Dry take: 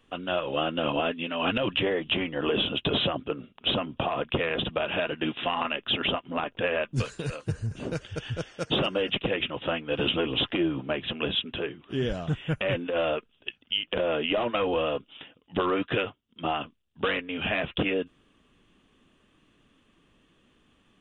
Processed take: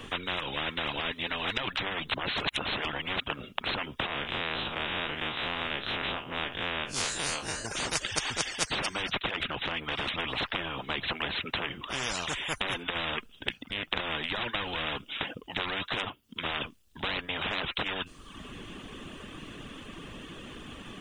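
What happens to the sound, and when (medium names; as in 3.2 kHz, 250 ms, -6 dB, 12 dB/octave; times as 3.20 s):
2.14–3.20 s: reverse
4.06–7.65 s: spectral blur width 83 ms
9.29–10.18 s: compression 2:1, threshold -32 dBFS
whole clip: reverb removal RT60 0.53 s; dynamic bell 2.6 kHz, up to +8 dB, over -48 dBFS, Q 6.8; spectrum-flattening compressor 10:1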